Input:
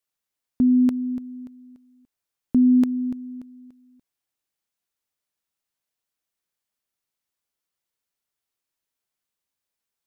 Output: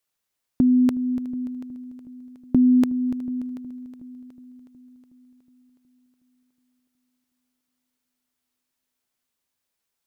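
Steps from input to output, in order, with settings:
dynamic equaliser 230 Hz, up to −7 dB, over −32 dBFS, Q 3.9
on a send: echo machine with several playback heads 367 ms, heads first and second, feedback 47%, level −21.5 dB
on the sum: level +4.5 dB

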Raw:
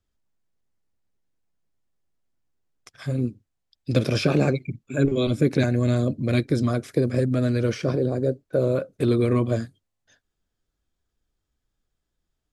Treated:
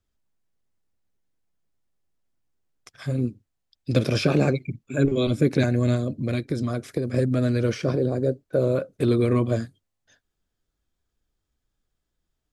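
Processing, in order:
0:05.95–0:07.14: downward compressor, threshold −22 dBFS, peak gain reduction 6.5 dB

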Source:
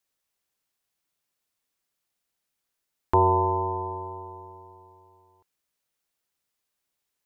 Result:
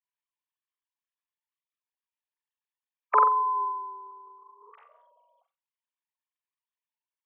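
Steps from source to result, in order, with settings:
three sine waves on the formant tracks
flutter between parallel walls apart 7.6 metres, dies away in 0.29 s
formants moved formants +3 semitones

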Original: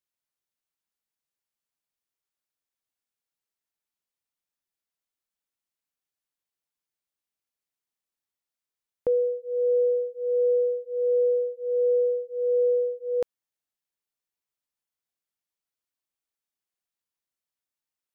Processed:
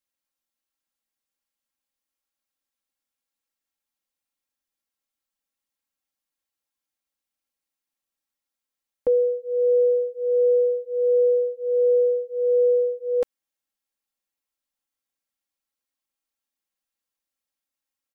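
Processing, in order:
comb filter 3.7 ms, depth 84%

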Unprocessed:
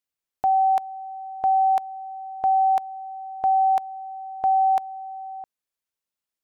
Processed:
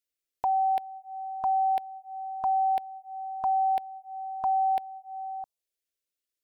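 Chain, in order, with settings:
phaser swept by the level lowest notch 160 Hz, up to 1,200 Hz, full sweep at −25.5 dBFS

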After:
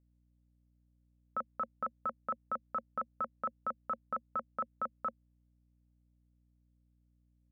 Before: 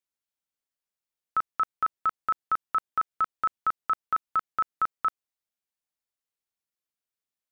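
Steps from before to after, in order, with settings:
pair of resonant band-passes 350 Hz, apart 1.2 octaves
mains hum 60 Hz, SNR 28 dB
level +11 dB

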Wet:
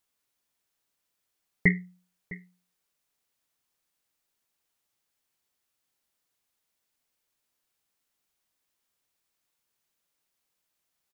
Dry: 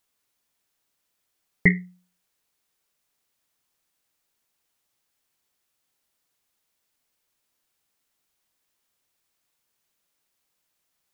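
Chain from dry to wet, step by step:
single-tap delay 657 ms −19 dB
level −4 dB

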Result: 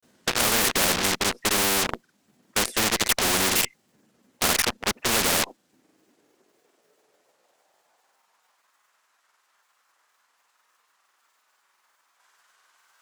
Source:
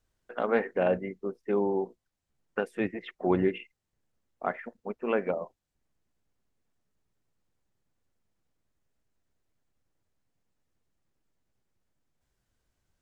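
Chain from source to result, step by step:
granular cloud 100 ms, grains 20 per second, spray 35 ms
high-pass filter sweep 220 Hz → 1,100 Hz, 0:05.41–0:08.72
in parallel at −11.5 dB: fuzz pedal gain 48 dB, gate −44 dBFS
on the sum: every bin compressed towards the loudest bin 4 to 1
level +1.5 dB

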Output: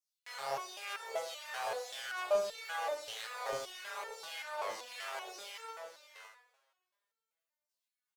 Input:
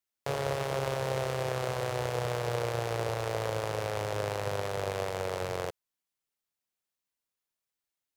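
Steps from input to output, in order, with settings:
auto-filter high-pass saw down 1.7 Hz 530–6,200 Hz
0:04.40–0:04.86: bass and treble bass −6 dB, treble −4 dB
single-tap delay 563 ms −11 dB
coupled-rooms reverb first 0.63 s, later 2.3 s, DRR 0.5 dB
step-sequenced resonator 5.2 Hz 110–450 Hz
level +4 dB

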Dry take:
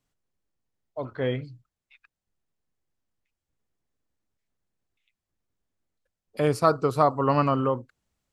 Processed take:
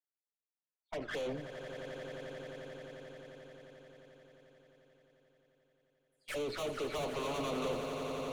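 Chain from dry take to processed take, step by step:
every frequency bin delayed by itself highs early, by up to 217 ms
source passing by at 0:03.74, 9 m/s, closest 9 metres
low-pass filter 1,800 Hz 6 dB per octave
noise gate with hold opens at −56 dBFS
high-pass filter 420 Hz 12 dB per octave
in parallel at +2.5 dB: downward compressor, threshold −44 dBFS, peak gain reduction 16 dB
on the sum: tube saturation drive 47 dB, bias 0.5
flanger swept by the level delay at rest 9.5 ms, full sweep at −47 dBFS
echo that builds up and dies away 88 ms, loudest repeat 8, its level −13 dB
on a send at −15.5 dB: convolution reverb RT60 2.0 s, pre-delay 6 ms
on the sum: level +13 dB

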